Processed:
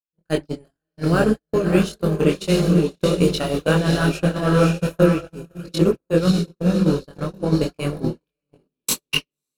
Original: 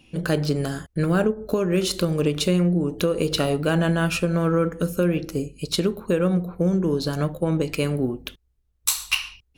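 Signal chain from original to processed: diffused feedback echo 0.59 s, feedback 47%, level -4.5 dB; gate -19 dBFS, range -60 dB; chorus voices 6, 1.4 Hz, delay 22 ms, depth 3 ms; gain +7.5 dB

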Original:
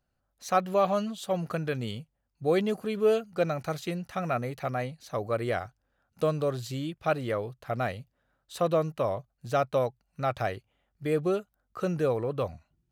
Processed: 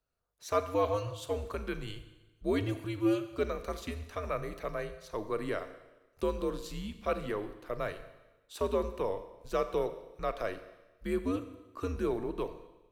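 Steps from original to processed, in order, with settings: low shelf 170 Hz -5.5 dB; Schroeder reverb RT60 1.1 s, combs from 30 ms, DRR 10 dB; frequency shift -99 Hz; gain -4.5 dB

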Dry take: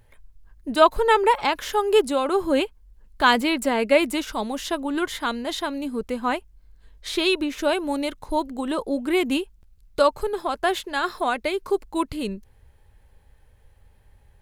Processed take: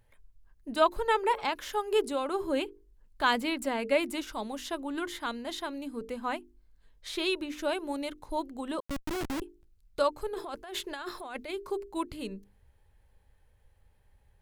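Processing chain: notches 50/100/150/200/250/300/350/400/450 Hz; 8.8–9.42 Schmitt trigger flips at -22.5 dBFS; 10.34–11.51 negative-ratio compressor -30 dBFS, ratio -1; gain -8.5 dB

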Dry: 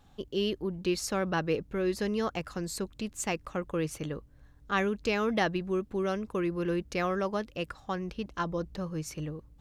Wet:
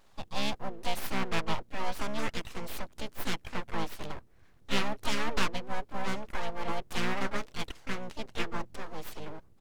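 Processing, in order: low shelf 220 Hz -8.5 dB; full-wave rectifier; harmoniser -7 st -10 dB, +5 st -5 dB; Doppler distortion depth 0.25 ms; gain +1 dB

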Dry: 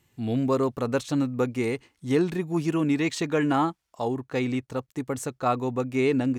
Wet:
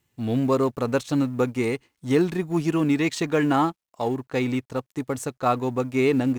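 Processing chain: G.711 law mismatch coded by A; gain +3 dB

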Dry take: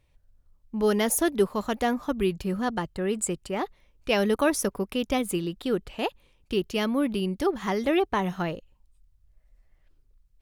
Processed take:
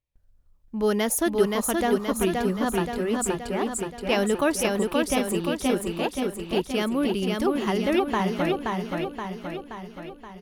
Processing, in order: gate with hold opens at -55 dBFS; feedback echo 0.525 s, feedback 57%, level -3 dB

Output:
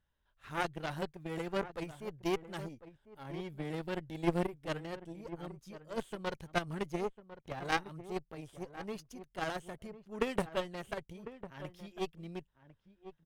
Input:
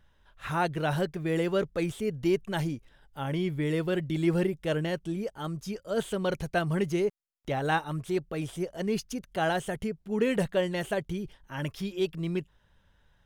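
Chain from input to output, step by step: added harmonics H 2 -12 dB, 3 -11 dB, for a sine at -13.5 dBFS; outdoor echo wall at 180 m, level -13 dB

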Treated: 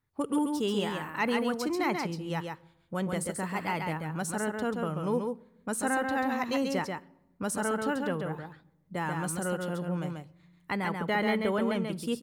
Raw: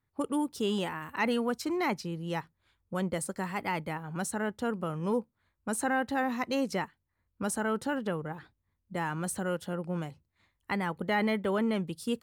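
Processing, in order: echo 0.137 s -4.5 dB; shoebox room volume 3800 m³, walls furnished, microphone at 0.37 m

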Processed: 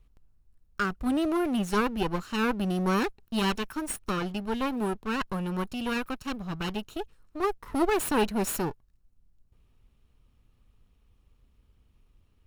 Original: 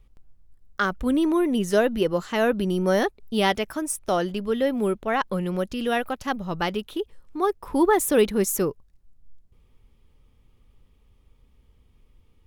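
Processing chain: minimum comb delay 0.72 ms; gain -4 dB

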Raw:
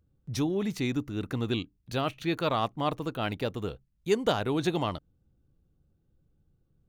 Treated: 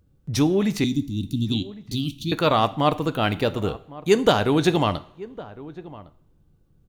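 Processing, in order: 0.84–2.32 elliptic band-stop 270–3400 Hz, stop band 40 dB; outdoor echo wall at 190 m, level -18 dB; two-slope reverb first 0.49 s, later 2.3 s, from -25 dB, DRR 12.5 dB; gain +8.5 dB

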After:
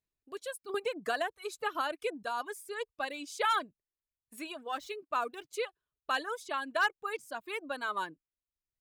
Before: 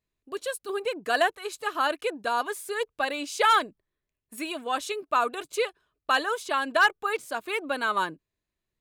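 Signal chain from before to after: 4.63–5.48 median filter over 5 samples; reverb removal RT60 0.87 s; 0.74–2.23 three-band squash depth 100%; gain -8 dB

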